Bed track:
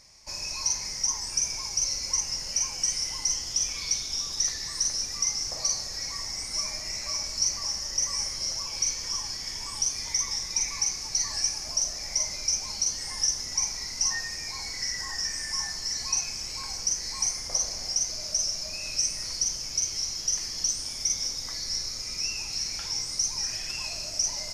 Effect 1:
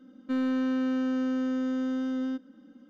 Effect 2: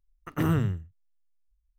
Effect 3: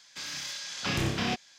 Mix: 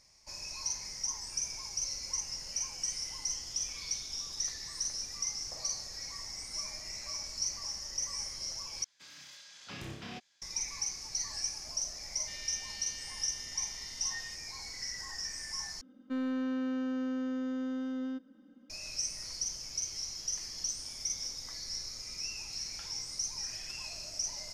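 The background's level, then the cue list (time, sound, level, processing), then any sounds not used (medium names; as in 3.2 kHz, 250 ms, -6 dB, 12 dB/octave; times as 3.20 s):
bed track -8.5 dB
8.84 s: replace with 3 -14.5 dB
11.98 s: add 1 -0.5 dB + brick-wall FIR high-pass 1.6 kHz
15.81 s: replace with 1 -6 dB
not used: 2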